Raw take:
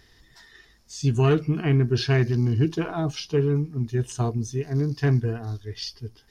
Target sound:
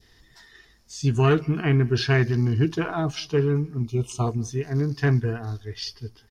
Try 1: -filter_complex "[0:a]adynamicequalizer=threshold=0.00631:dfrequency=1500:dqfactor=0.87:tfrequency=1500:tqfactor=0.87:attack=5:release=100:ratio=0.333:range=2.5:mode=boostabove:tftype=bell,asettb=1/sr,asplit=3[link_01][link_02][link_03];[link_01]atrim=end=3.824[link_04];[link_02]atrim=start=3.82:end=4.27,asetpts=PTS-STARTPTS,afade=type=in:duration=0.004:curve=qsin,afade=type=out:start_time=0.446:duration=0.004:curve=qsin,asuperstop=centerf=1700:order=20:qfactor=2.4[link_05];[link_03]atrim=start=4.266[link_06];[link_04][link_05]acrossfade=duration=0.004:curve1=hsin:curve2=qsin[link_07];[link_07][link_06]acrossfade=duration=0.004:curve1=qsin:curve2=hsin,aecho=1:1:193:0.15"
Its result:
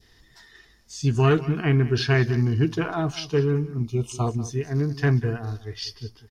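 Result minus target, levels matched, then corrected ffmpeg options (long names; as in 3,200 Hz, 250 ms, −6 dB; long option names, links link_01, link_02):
echo-to-direct +11.5 dB
-filter_complex "[0:a]adynamicequalizer=threshold=0.00631:dfrequency=1500:dqfactor=0.87:tfrequency=1500:tqfactor=0.87:attack=5:release=100:ratio=0.333:range=2.5:mode=boostabove:tftype=bell,asettb=1/sr,asplit=3[link_01][link_02][link_03];[link_01]atrim=end=3.824[link_04];[link_02]atrim=start=3.82:end=4.27,asetpts=PTS-STARTPTS,afade=type=in:duration=0.004:curve=qsin,afade=type=out:start_time=0.446:duration=0.004:curve=qsin,asuperstop=centerf=1700:order=20:qfactor=2.4[link_05];[link_03]atrim=start=4.266[link_06];[link_04][link_05]acrossfade=duration=0.004:curve1=hsin:curve2=qsin[link_07];[link_07][link_06]acrossfade=duration=0.004:curve1=qsin:curve2=hsin,aecho=1:1:193:0.0398"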